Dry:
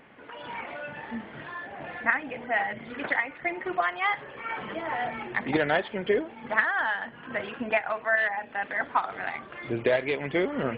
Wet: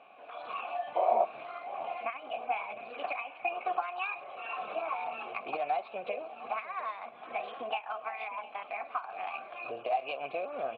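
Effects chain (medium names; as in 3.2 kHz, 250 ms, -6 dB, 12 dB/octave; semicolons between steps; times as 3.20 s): compression 4:1, threshold -30 dBFS, peak gain reduction 11.5 dB; painted sound noise, 0.95–1.25 s, 330–960 Hz -27 dBFS; formant shift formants +3 st; vowel filter a; on a send: delay 708 ms -17 dB; on the sum: trim +8.5 dB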